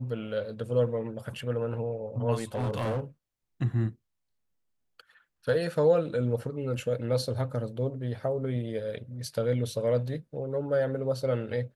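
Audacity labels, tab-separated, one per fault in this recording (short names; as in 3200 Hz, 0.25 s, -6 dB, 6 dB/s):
2.350000	3.000000	clipped -26 dBFS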